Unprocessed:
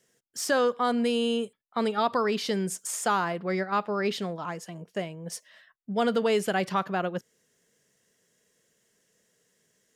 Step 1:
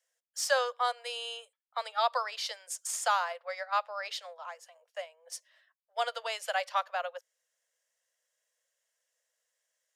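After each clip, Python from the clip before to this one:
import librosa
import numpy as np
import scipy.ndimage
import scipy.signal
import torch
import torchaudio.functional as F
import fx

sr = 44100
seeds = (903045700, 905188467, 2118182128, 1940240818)

y = scipy.signal.sosfilt(scipy.signal.butter(16, 510.0, 'highpass', fs=sr, output='sos'), x)
y = fx.dynamic_eq(y, sr, hz=5100.0, q=0.72, threshold_db=-45.0, ratio=4.0, max_db=5)
y = fx.upward_expand(y, sr, threshold_db=-41.0, expansion=1.5)
y = y * 10.0 ** (-1.0 / 20.0)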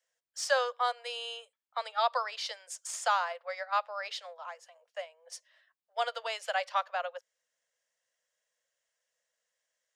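y = fx.peak_eq(x, sr, hz=13000.0, db=-11.0, octaves=0.88)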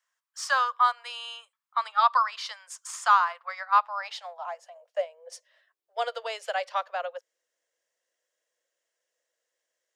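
y = fx.filter_sweep_highpass(x, sr, from_hz=1100.0, to_hz=350.0, start_s=3.64, end_s=5.9, q=4.1)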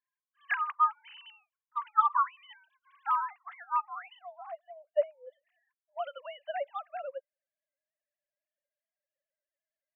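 y = fx.sine_speech(x, sr)
y = y * 10.0 ** (-5.5 / 20.0)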